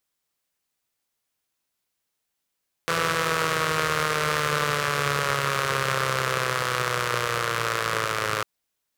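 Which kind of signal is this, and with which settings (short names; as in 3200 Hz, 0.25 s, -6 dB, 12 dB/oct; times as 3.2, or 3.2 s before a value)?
four-cylinder engine model, changing speed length 5.55 s, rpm 5000, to 3200, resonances 140/490/1200 Hz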